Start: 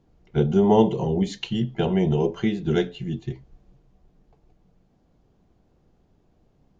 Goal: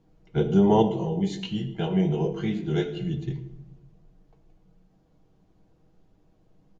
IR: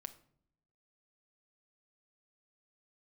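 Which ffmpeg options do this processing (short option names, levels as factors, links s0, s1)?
-filter_complex "[1:a]atrim=start_sample=2205,asetrate=25137,aresample=44100[s0];[0:a][s0]afir=irnorm=-1:irlink=0,asettb=1/sr,asplit=3[s1][s2][s3];[s1]atrim=end=0.824[s4];[s2]atrim=start=0.82:end=2.97,asetpts=PTS-STARTPTS,afade=t=in:d=0.004:c=qsin,afade=t=out:st=2.146:d=0.004:c=qsin,flanger=delay=18.5:depth=2.4:speed=2.9[s5];[s3]atrim=start=2.966[s6];[s4][s5]acrossfade=d=0.004:c1=hsin:c2=qsin[s7];[s7][s6]acrossfade=d=0.004:c1=qsin:c2=hsin,aecho=1:1:6.3:0.4"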